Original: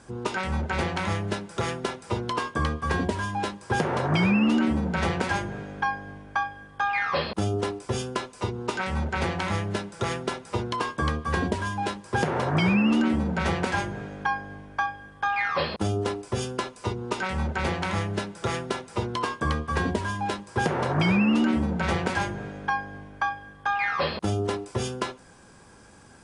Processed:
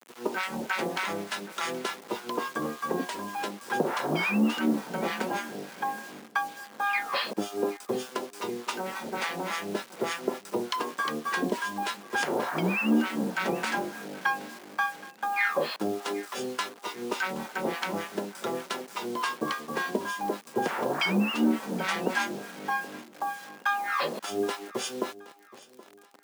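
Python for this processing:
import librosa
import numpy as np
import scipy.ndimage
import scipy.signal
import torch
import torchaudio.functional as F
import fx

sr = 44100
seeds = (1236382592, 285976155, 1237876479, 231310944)

p1 = fx.harmonic_tremolo(x, sr, hz=3.4, depth_pct=100, crossover_hz=860.0)
p2 = fx.quant_dither(p1, sr, seeds[0], bits=8, dither='none')
p3 = scipy.signal.sosfilt(scipy.signal.butter(4, 220.0, 'highpass', fs=sr, output='sos'), p2)
p4 = p3 + fx.echo_feedback(p3, sr, ms=773, feedback_pct=38, wet_db=-20.0, dry=0)
y = F.gain(torch.from_numpy(p4), 3.0).numpy()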